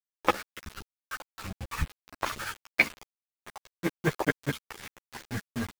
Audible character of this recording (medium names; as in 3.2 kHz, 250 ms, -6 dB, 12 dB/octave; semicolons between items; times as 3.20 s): chopped level 1.8 Hz, depth 60%, duty 75%; a quantiser's noise floor 6-bit, dither none; a shimmering, thickened sound